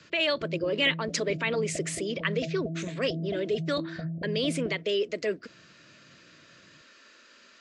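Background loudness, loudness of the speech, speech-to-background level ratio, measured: −37.5 LKFS, −29.5 LKFS, 8.0 dB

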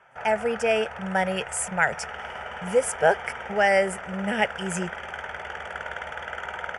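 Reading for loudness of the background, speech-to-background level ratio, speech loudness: −35.5 LKFS, 10.5 dB, −25.0 LKFS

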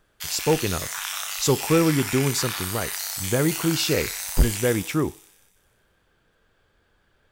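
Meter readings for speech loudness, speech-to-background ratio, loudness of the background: −24.5 LKFS, 4.0 dB, −28.5 LKFS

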